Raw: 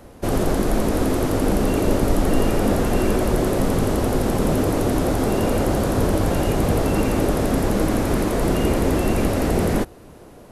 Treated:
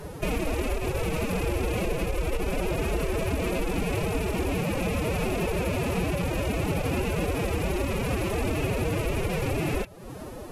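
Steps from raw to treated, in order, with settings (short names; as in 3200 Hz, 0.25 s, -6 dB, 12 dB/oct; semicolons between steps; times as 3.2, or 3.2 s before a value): rattling part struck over -25 dBFS, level -16 dBFS; compressor 3:1, threshold -34 dBFS, peak gain reduction 16 dB; formant-preserving pitch shift +10 st; gain +6 dB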